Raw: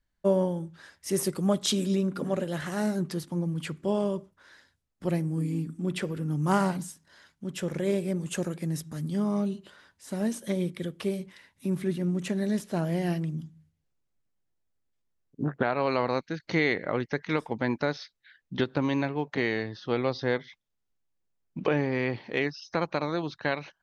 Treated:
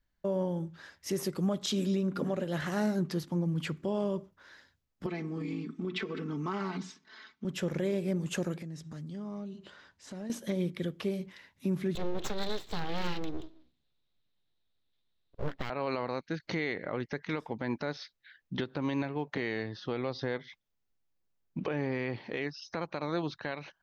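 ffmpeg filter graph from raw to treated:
ffmpeg -i in.wav -filter_complex "[0:a]asettb=1/sr,asplit=3[link_01][link_02][link_03];[link_01]atrim=end=5.064[link_04];[link_02]atrim=start=5.06:end=7.45,asetpts=PTS-STARTPTS,afade=type=in:duration=0.004:curve=qsin,afade=type=out:start_time=2.386:duration=0.004:curve=qsin,highpass=130,equalizer=frequency=160:width_type=q:width=4:gain=-10,equalizer=frequency=340:width_type=q:width=4:gain=9,equalizer=frequency=560:width_type=q:width=4:gain=-7,equalizer=frequency=1200:width_type=q:width=4:gain=7,equalizer=frequency=2200:width_type=q:width=4:gain=7,equalizer=frequency=3700:width_type=q:width=4:gain=5,lowpass=frequency=5900:width=0.5412,lowpass=frequency=5900:width=1.3066,aecho=1:1:4.6:0.73,atrim=end_sample=105399,acompressor=threshold=-31dB:ratio=6:attack=3.2:release=140:knee=1:detection=peak[link_05];[link_03]atrim=start=7.446[link_06];[link_04][link_05]acrossfade=duration=0.004:curve1=hsin:curve2=qsin[link_07];[link_07][link_06]acrossfade=duration=0.004:curve1=qsin:curve2=hsin,asettb=1/sr,asplit=3[link_08][link_09][link_10];[link_08]atrim=end=8.624[link_11];[link_09]atrim=start=8.62:end=10.3,asetpts=PTS-STARTPTS,afade=type=in:duration=0.004:curve=qsin,afade=type=out:start_time=1.676:duration=0.004:curve=qsin,lowpass=frequency=9100:width=0.5412,lowpass=frequency=9100:width=1.3066,acompressor=threshold=-42dB:ratio=3:attack=3.2:release=140:knee=1:detection=peak[link_12];[link_10]atrim=start=10.296[link_13];[link_11][link_12]acrossfade=duration=0.004:curve1=hsin:curve2=qsin[link_14];[link_14][link_13]acrossfade=duration=0.004:curve1=qsin:curve2=hsin,asettb=1/sr,asplit=3[link_15][link_16][link_17];[link_15]atrim=end=11.954[link_18];[link_16]atrim=start=11.95:end=15.7,asetpts=PTS-STARTPTS,afade=type=in:duration=0.004:curve=qsin,afade=type=out:start_time=3.746:duration=0.004:curve=qsin,lowpass=frequency=3800:width_type=q:width=7.5,aeval=exprs='abs(val(0))':channel_layout=same[link_19];[link_17]atrim=start=15.696[link_20];[link_18][link_19]acrossfade=duration=0.004:curve1=hsin:curve2=qsin[link_21];[link_21][link_20]acrossfade=duration=0.004:curve1=qsin:curve2=hsin,equalizer=frequency=9300:width_type=o:width=0.4:gain=-13.5,alimiter=limit=-22dB:level=0:latency=1:release=183" out.wav

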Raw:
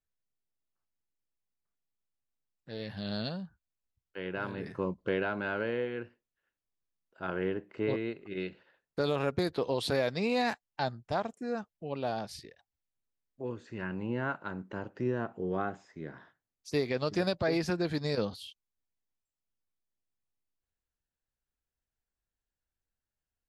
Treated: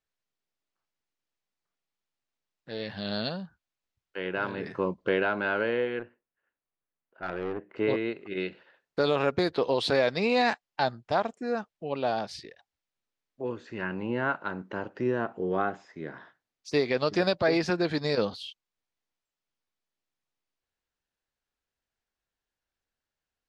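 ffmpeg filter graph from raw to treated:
ffmpeg -i in.wav -filter_complex "[0:a]asettb=1/sr,asplit=3[link_01][link_02][link_03];[link_01]atrim=end=5.994[link_04];[link_02]atrim=start=5.99:end=7.76,asetpts=PTS-STARTPTS,afade=type=in:duration=0.004:curve=qsin,afade=type=out:start_time=1.766:duration=0.004:curve=qsin,lowpass=2100,aeval=exprs='(tanh(39.8*val(0)+0.55)-tanh(0.55))/39.8':channel_layout=same[link_05];[link_03]atrim=start=7.756[link_06];[link_04][link_05]acrossfade=duration=0.004:curve1=hsin:curve2=qsin[link_07];[link_07][link_06]acrossfade=duration=0.004:curve1=qsin:curve2=hsin,lowpass=5500,lowshelf=frequency=170:gain=-11,volume=6.5dB" out.wav

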